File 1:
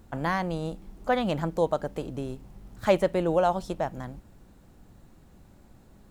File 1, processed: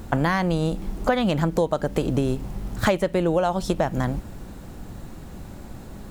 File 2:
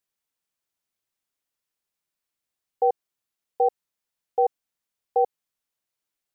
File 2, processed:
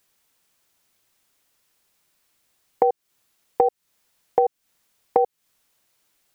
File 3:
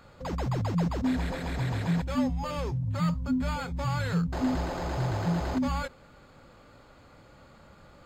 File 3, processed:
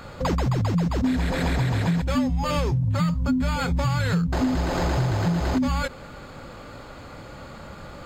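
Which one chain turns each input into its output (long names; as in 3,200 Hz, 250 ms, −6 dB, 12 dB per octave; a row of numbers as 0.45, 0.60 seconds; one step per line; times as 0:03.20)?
dynamic equaliser 760 Hz, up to −4 dB, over −37 dBFS, Q 0.84
downward compressor 10 to 1, threshold −33 dBFS
loudness normalisation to −24 LKFS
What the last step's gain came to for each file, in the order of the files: +15.5, +17.0, +13.5 decibels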